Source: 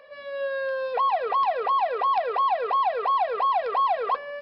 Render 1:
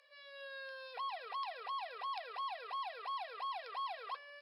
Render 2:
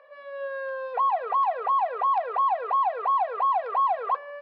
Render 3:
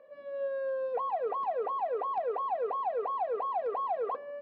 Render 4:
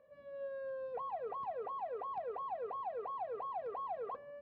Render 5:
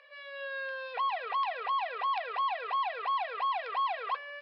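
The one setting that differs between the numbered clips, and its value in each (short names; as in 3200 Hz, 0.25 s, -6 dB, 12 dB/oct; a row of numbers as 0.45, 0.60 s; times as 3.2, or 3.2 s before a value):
band-pass, frequency: 7300, 980, 310, 120, 2600 Hz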